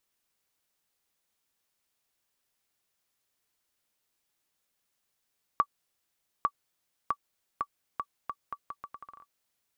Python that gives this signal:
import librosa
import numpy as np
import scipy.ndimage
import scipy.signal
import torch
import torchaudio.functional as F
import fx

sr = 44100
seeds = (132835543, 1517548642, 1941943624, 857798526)

y = fx.bouncing_ball(sr, first_gap_s=0.85, ratio=0.77, hz=1150.0, decay_ms=60.0, level_db=-12.0)